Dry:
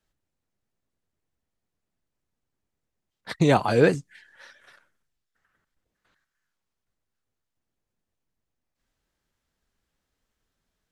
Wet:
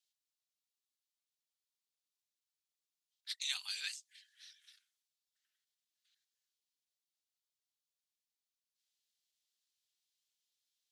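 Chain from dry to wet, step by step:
four-pole ladder high-pass 2,900 Hz, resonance 30%
level +3.5 dB

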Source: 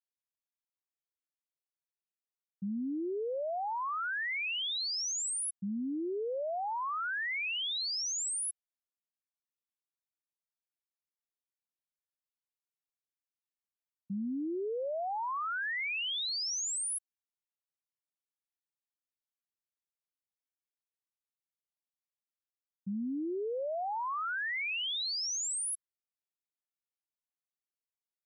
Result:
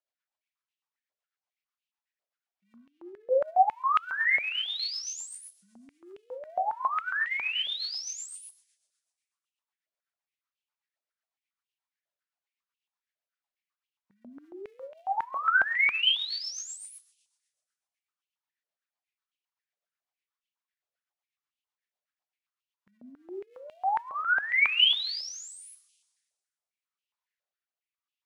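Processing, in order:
high-frequency loss of the air 98 metres
phase shifter 1.8 Hz, delay 2.7 ms, feedback 36%
0:02.75–0:03.31: high-shelf EQ 5,100 Hz −9.5 dB
coupled-rooms reverb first 0.49 s, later 1.8 s, from −21 dB, DRR 8 dB
rotating-speaker cabinet horn 8 Hz, later 0.85 Hz, at 0:23.08
high-pass on a step sequencer 7.3 Hz 600–2,800 Hz
level +4.5 dB

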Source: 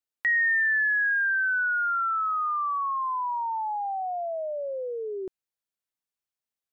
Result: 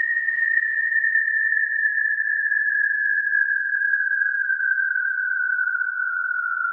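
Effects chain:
extreme stretch with random phases 4.5×, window 1.00 s, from 0:00.36
reverb whose tail is shaped and stops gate 470 ms rising, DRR 2 dB

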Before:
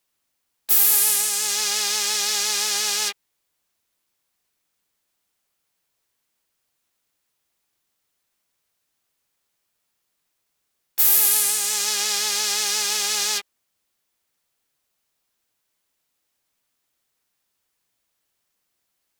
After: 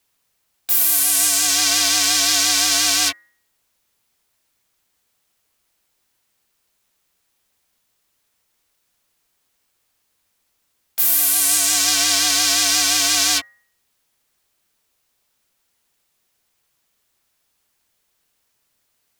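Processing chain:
hum removal 223.8 Hz, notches 10
in parallel at +1.5 dB: compressor whose output falls as the input rises −22 dBFS, ratio −0.5
on the sum: frequency shifter −120 Hz
level −1.5 dB

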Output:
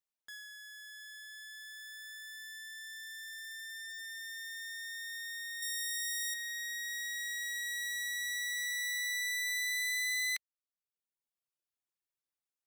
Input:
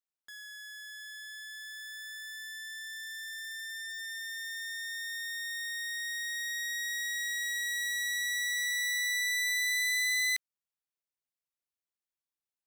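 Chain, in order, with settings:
reverb reduction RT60 1.2 s
0:05.62–0:06.34: bass and treble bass +14 dB, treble +10 dB

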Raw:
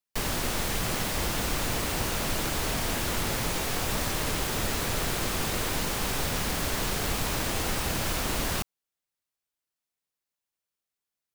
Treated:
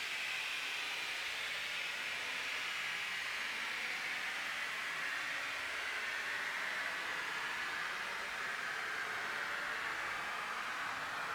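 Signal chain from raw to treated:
band-pass filter sweep 4,600 Hz → 1,100 Hz, 0:04.85–0:07.89
extreme stretch with random phases 10×, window 0.10 s, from 0:06.11

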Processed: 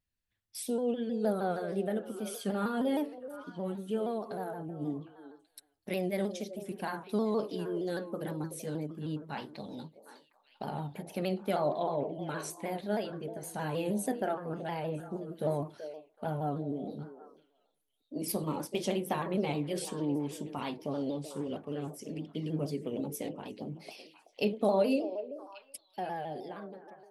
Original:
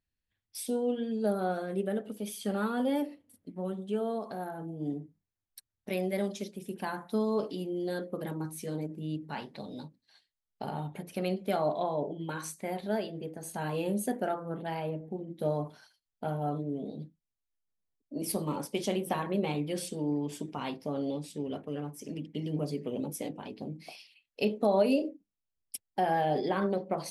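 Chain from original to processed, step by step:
fade-out on the ending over 2.51 s
echo through a band-pass that steps 379 ms, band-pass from 480 Hz, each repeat 1.4 octaves, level −9.5 dB
pitch modulation by a square or saw wave saw down 6.4 Hz, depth 100 cents
level −1 dB

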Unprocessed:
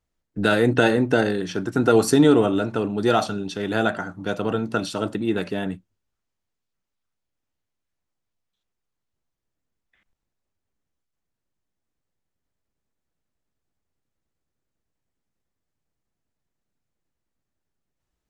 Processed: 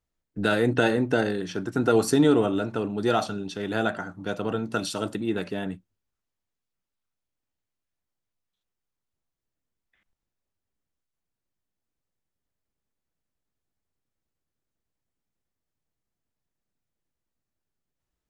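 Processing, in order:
0:04.72–0:05.21: high-shelf EQ 4,300 Hz +8.5 dB
level −4 dB

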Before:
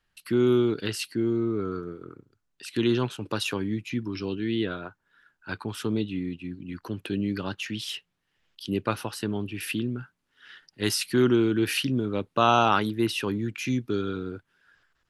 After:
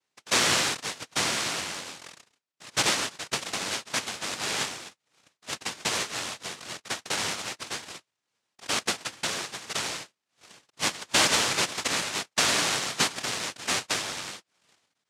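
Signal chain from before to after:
transient designer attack +6 dB, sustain +1 dB
high-frequency loss of the air 200 metres
cochlear-implant simulation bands 1
high-shelf EQ 5,800 Hz −6 dB
level −2 dB

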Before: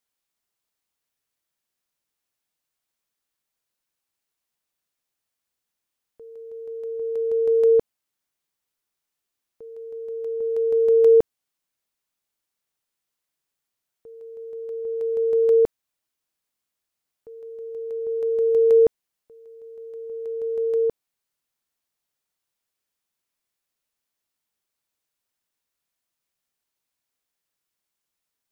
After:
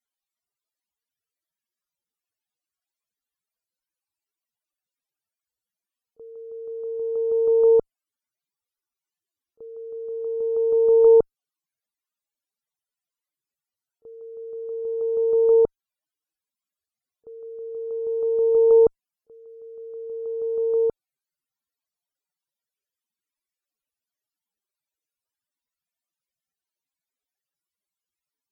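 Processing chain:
harmonic generator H 2 −24 dB, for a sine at −9 dBFS
echo ahead of the sound 31 ms −22 dB
spectral peaks only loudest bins 64

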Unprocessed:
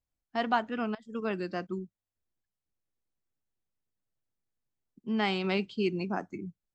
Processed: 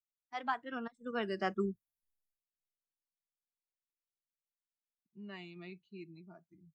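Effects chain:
source passing by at 0:01.83, 27 m/s, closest 7.1 metres
noise reduction from a noise print of the clip's start 13 dB
dynamic equaliser 1,300 Hz, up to +5 dB, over −56 dBFS, Q 0.73
level +3.5 dB

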